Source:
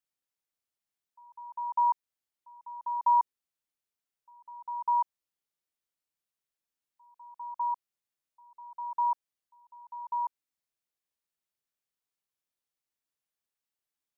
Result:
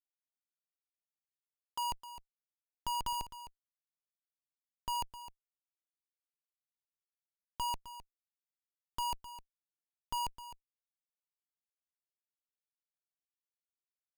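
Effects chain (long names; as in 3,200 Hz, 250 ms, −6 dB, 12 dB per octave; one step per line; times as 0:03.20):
bass and treble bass −10 dB, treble −15 dB
comparator with hysteresis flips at −30 dBFS
single-tap delay 259 ms −13.5 dB
level +2 dB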